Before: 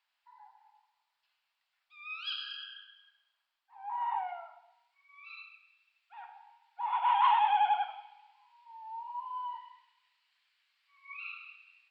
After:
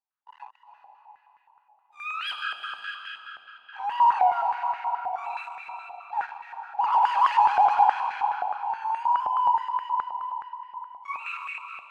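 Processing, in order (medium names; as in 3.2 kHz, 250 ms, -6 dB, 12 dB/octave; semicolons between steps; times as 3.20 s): in parallel at -3 dB: peak limiter -25 dBFS, peak gain reduction 9.5 dB; on the sum: waveshaping leveller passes 5; on a send at -3 dB: reverberation RT60 4.5 s, pre-delay 226 ms; on the sum: step-sequenced band-pass 9.5 Hz 750–1800 Hz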